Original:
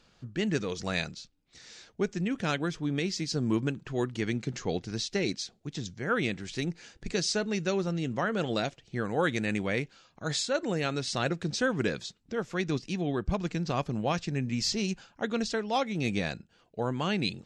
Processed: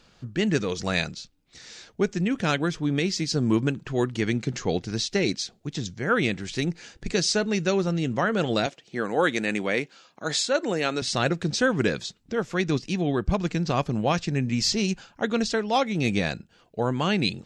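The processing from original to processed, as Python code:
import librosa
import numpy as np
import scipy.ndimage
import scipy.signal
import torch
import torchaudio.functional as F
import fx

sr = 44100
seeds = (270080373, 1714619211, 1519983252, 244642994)

y = fx.highpass(x, sr, hz=230.0, slope=12, at=(8.66, 11.02))
y = F.gain(torch.from_numpy(y), 5.5).numpy()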